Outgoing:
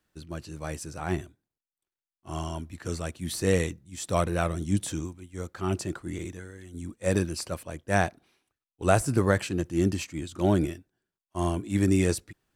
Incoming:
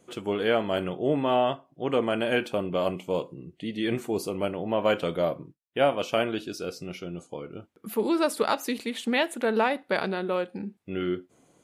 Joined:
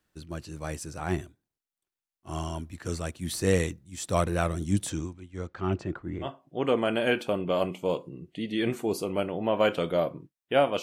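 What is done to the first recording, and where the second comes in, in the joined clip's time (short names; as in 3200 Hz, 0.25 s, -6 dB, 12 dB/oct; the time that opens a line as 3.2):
outgoing
4.89–6.29 LPF 8200 Hz -> 1400 Hz
6.25 switch to incoming from 1.5 s, crossfade 0.08 s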